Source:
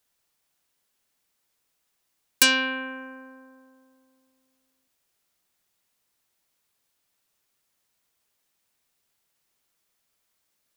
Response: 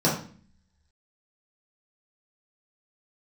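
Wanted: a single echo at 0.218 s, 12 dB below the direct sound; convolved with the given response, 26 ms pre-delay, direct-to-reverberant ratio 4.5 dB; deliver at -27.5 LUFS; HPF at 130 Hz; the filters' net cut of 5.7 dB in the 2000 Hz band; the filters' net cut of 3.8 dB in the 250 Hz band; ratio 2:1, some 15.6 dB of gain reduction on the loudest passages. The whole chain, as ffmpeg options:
-filter_complex "[0:a]highpass=130,equalizer=f=250:t=o:g=-3.5,equalizer=f=2k:t=o:g=-8,acompressor=threshold=-44dB:ratio=2,aecho=1:1:218:0.251,asplit=2[a][b];[1:a]atrim=start_sample=2205,adelay=26[c];[b][c]afir=irnorm=-1:irlink=0,volume=-19.5dB[d];[a][d]amix=inputs=2:normalize=0,volume=13dB"

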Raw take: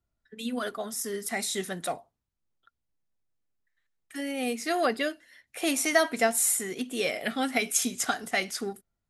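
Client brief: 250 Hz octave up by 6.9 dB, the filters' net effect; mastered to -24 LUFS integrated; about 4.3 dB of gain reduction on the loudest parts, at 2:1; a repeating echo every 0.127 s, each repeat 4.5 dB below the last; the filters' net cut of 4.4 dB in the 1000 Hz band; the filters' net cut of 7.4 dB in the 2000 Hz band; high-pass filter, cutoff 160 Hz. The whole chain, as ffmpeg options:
-af "highpass=160,equalizer=f=250:t=o:g=9,equalizer=f=1k:t=o:g=-7,equalizer=f=2k:t=o:g=-7,acompressor=threshold=-27dB:ratio=2,aecho=1:1:127|254|381|508|635|762|889|1016|1143:0.596|0.357|0.214|0.129|0.0772|0.0463|0.0278|0.0167|0.01,volume=5dB"

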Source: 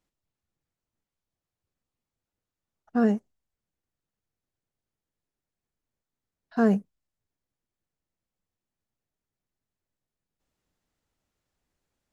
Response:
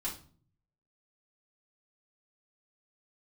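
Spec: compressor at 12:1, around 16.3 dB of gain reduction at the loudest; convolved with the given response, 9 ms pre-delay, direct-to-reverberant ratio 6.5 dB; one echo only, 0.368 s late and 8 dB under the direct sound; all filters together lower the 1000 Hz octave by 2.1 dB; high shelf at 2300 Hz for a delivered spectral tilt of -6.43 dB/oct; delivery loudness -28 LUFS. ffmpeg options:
-filter_complex "[0:a]equalizer=f=1k:t=o:g=-5.5,highshelf=f=2.3k:g=8.5,acompressor=threshold=-33dB:ratio=12,aecho=1:1:368:0.398,asplit=2[a][b];[1:a]atrim=start_sample=2205,adelay=9[c];[b][c]afir=irnorm=-1:irlink=0,volume=-8dB[d];[a][d]amix=inputs=2:normalize=0,volume=11dB"

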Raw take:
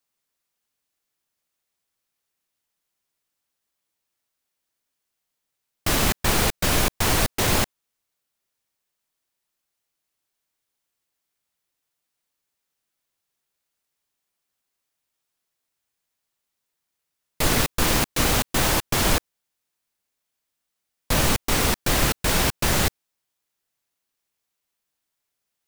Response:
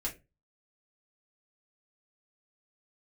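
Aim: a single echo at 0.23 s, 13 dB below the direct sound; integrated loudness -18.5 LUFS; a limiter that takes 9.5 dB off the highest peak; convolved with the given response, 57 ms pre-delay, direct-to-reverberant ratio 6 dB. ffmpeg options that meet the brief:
-filter_complex "[0:a]alimiter=limit=-16.5dB:level=0:latency=1,aecho=1:1:230:0.224,asplit=2[a][b];[1:a]atrim=start_sample=2205,adelay=57[c];[b][c]afir=irnorm=-1:irlink=0,volume=-8dB[d];[a][d]amix=inputs=2:normalize=0,volume=8dB"

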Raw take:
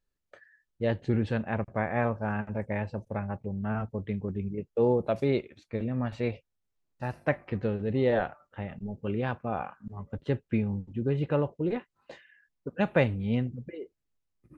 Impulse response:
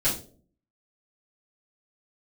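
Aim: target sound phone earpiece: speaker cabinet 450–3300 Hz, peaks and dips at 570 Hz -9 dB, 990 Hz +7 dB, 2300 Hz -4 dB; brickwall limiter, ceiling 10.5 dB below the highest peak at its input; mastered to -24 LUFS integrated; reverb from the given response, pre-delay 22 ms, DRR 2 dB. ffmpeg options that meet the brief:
-filter_complex "[0:a]alimiter=limit=-21.5dB:level=0:latency=1,asplit=2[a][b];[1:a]atrim=start_sample=2205,adelay=22[c];[b][c]afir=irnorm=-1:irlink=0,volume=-13dB[d];[a][d]amix=inputs=2:normalize=0,highpass=450,equalizer=f=570:t=q:w=4:g=-9,equalizer=f=990:t=q:w=4:g=7,equalizer=f=2.3k:t=q:w=4:g=-4,lowpass=f=3.3k:w=0.5412,lowpass=f=3.3k:w=1.3066,volume=14.5dB"

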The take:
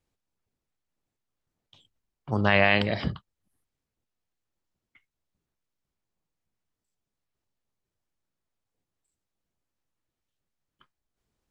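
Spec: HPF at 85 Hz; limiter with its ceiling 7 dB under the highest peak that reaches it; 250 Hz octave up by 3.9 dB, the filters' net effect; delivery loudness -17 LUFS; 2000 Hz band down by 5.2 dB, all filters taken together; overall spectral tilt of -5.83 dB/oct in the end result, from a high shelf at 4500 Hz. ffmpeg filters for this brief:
-af "highpass=85,equalizer=f=250:t=o:g=5.5,equalizer=f=2k:t=o:g=-4.5,highshelf=f=4.5k:g=-9,volume=10.5dB,alimiter=limit=-4dB:level=0:latency=1"

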